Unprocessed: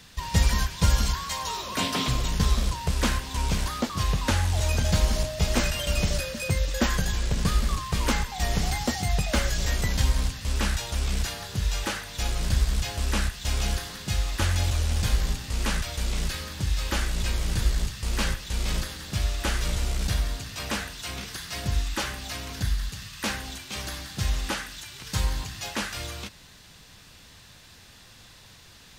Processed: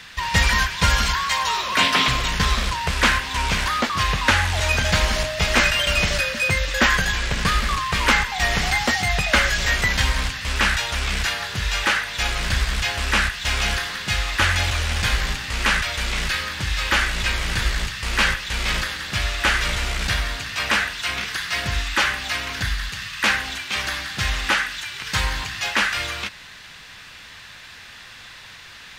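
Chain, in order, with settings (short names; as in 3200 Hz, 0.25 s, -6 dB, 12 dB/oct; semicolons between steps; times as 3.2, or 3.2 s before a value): bell 1900 Hz +15 dB 2.5 oct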